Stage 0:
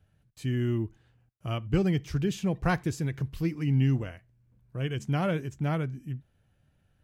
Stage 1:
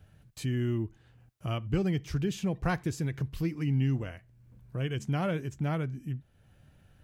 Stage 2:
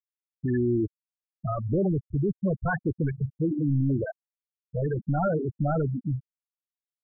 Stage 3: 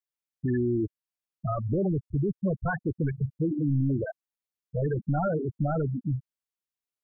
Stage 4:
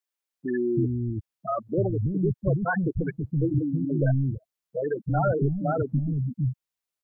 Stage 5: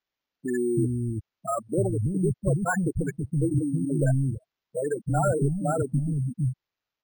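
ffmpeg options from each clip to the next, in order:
-af "acompressor=threshold=0.00178:ratio=1.5,volume=2.66"
-filter_complex "[0:a]asplit=2[s0][s1];[s1]highpass=f=720:p=1,volume=35.5,asoftclip=type=tanh:threshold=0.15[s2];[s0][s2]amix=inputs=2:normalize=0,lowpass=f=2800:p=1,volume=0.501,afftfilt=real='re*gte(hypot(re,im),0.224)':imag='im*gte(hypot(re,im),0.224)':win_size=1024:overlap=0.75"
-af "alimiter=limit=0.106:level=0:latency=1:release=464"
-filter_complex "[0:a]acrossover=split=240[s0][s1];[s0]adelay=330[s2];[s2][s1]amix=inputs=2:normalize=0,volume=1.58"
-af "acrusher=samples=5:mix=1:aa=0.000001"

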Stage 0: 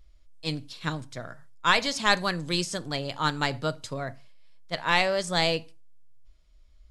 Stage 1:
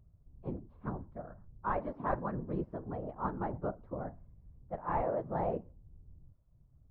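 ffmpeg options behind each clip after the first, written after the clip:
-af "afftfilt=real='hypot(re,im)*cos(2*PI*random(0))':imag='hypot(re,im)*sin(2*PI*random(1))':win_size=512:overlap=0.75,acontrast=69,lowpass=f=1100:w=0.5412,lowpass=f=1100:w=1.3066,volume=0.447"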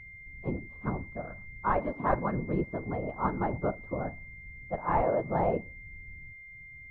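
-af "aeval=exprs='val(0)+0.00251*sin(2*PI*2100*n/s)':c=same,volume=2"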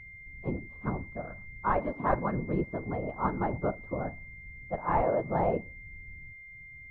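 -af anull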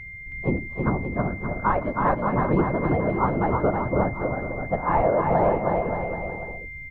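-af "alimiter=limit=0.0944:level=0:latency=1:release=417,aecho=1:1:320|576|780.8|944.6|1076:0.631|0.398|0.251|0.158|0.1,volume=2.82"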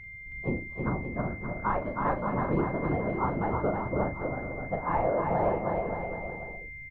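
-filter_complex "[0:a]asplit=2[s0][s1];[s1]adelay=39,volume=0.398[s2];[s0][s2]amix=inputs=2:normalize=0,volume=0.447"

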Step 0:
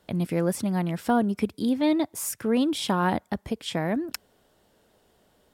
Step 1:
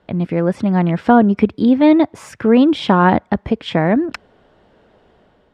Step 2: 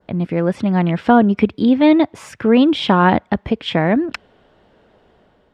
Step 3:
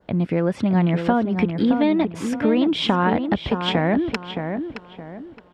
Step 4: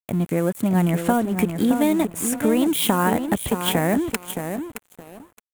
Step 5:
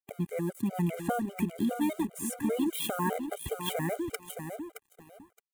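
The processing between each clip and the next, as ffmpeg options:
-af "lowpass=2500,dynaudnorm=f=430:g=3:m=1.78,volume=2.24"
-af "adynamicequalizer=threshold=0.0141:dfrequency=3000:dqfactor=1.2:tfrequency=3000:tqfactor=1.2:attack=5:release=100:ratio=0.375:range=2.5:mode=boostabove:tftype=bell,volume=0.891"
-filter_complex "[0:a]acompressor=threshold=0.158:ratio=6,asplit=2[s0][s1];[s1]adelay=619,lowpass=f=2400:p=1,volume=0.473,asplit=2[s2][s3];[s3]adelay=619,lowpass=f=2400:p=1,volume=0.33,asplit=2[s4][s5];[s5]adelay=619,lowpass=f=2400:p=1,volume=0.33,asplit=2[s6][s7];[s7]adelay=619,lowpass=f=2400:p=1,volume=0.33[s8];[s2][s4][s6][s8]amix=inputs=4:normalize=0[s9];[s0][s9]amix=inputs=2:normalize=0"
-af "aeval=exprs='sgn(val(0))*max(abs(val(0))-0.0126,0)':c=same,aexciter=amount=8.7:drive=8.1:freq=7400"
-af "afftfilt=real='re*gt(sin(2*PI*5*pts/sr)*(1-2*mod(floor(b*sr/1024/400),2)),0)':imag='im*gt(sin(2*PI*5*pts/sr)*(1-2*mod(floor(b*sr/1024/400),2)),0)':win_size=1024:overlap=0.75,volume=0.398"

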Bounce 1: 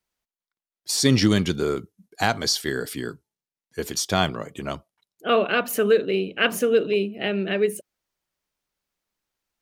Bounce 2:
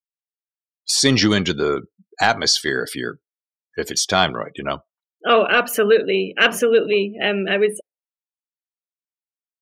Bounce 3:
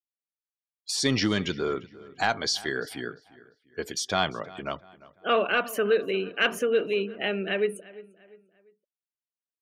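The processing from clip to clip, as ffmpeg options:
-filter_complex "[0:a]asplit=2[s0][s1];[s1]asoftclip=type=tanh:threshold=0.1,volume=0.282[s2];[s0][s2]amix=inputs=2:normalize=0,asplit=2[s3][s4];[s4]highpass=f=720:p=1,volume=2.51,asoftclip=type=tanh:threshold=0.631[s5];[s3][s5]amix=inputs=2:normalize=0,lowpass=f=5500:p=1,volume=0.501,afftdn=nr=36:nf=-38,volume=1.41"
-filter_complex "[0:a]bass=f=250:g=0,treble=f=4000:g=-3,asplit=2[s0][s1];[s1]adelay=347,lowpass=f=3000:p=1,volume=0.106,asplit=2[s2][s3];[s3]adelay=347,lowpass=f=3000:p=1,volume=0.42,asplit=2[s4][s5];[s5]adelay=347,lowpass=f=3000:p=1,volume=0.42[s6];[s0][s2][s4][s6]amix=inputs=4:normalize=0,volume=0.376"

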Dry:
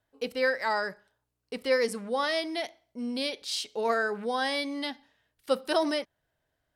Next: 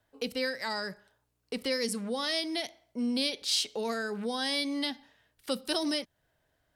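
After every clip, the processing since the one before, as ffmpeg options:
-filter_complex "[0:a]acrossover=split=270|3000[s0][s1][s2];[s1]acompressor=threshold=0.00891:ratio=4[s3];[s0][s3][s2]amix=inputs=3:normalize=0,volume=1.68"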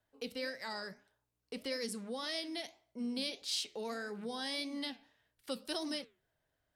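-af "flanger=delay=5:depth=7.7:regen=-80:speed=1.7:shape=triangular,volume=0.668"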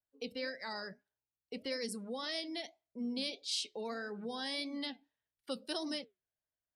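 -af "afftdn=nr=18:nf=-53"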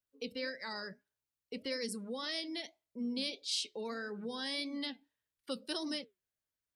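-af "equalizer=f=730:w=3.9:g=-7.5,volume=1.12"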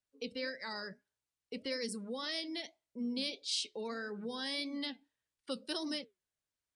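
-af "aresample=22050,aresample=44100"

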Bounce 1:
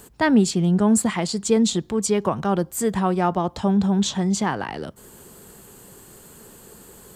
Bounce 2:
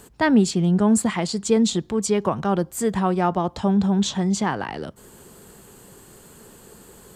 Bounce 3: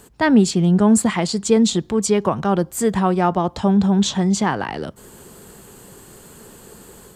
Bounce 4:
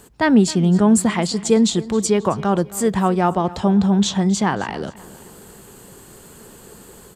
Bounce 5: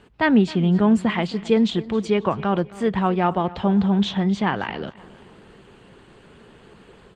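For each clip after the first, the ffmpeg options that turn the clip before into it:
-af "highshelf=f=11000:g=-7"
-af "dynaudnorm=f=150:g=3:m=1.58"
-af "aecho=1:1:267|534|801:0.112|0.0471|0.0198"
-af "lowpass=f=2900:t=q:w=1.8,volume=0.708" -ar 48000 -c:a libopus -b:a 24k

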